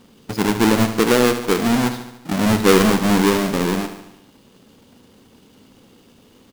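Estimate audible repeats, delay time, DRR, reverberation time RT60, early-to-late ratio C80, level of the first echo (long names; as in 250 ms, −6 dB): 6, 73 ms, no reverb audible, no reverb audible, no reverb audible, −10.0 dB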